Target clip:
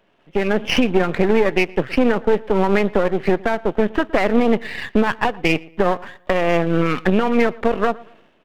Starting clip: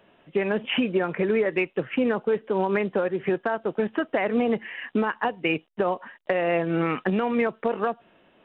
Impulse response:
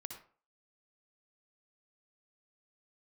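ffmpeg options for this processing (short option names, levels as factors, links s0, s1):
-filter_complex "[0:a]aeval=exprs='if(lt(val(0),0),0.251*val(0),val(0))':c=same,dynaudnorm=f=100:g=7:m=3.76,asplit=2[s0][s1];[s1]adelay=116,lowpass=f=2600:p=1,volume=0.0794,asplit=2[s2][s3];[s3]adelay=116,lowpass=f=2600:p=1,volume=0.36,asplit=2[s4][s5];[s5]adelay=116,lowpass=f=2600:p=1,volume=0.36[s6];[s0][s2][s4][s6]amix=inputs=4:normalize=0"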